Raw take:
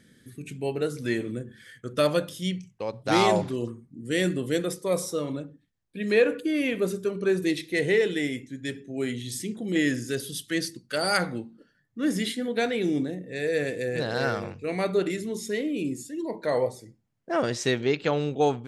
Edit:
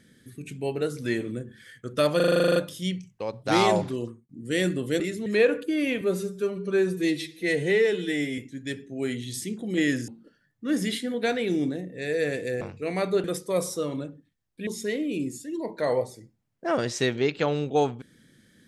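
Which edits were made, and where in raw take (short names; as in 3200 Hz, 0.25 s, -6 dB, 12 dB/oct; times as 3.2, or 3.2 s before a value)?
2.16 stutter 0.04 s, 11 plays
3.46–3.89 fade out equal-power
4.6–6.03 swap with 15.06–15.32
6.78–8.36 stretch 1.5×
10.06–11.42 cut
13.95–14.43 cut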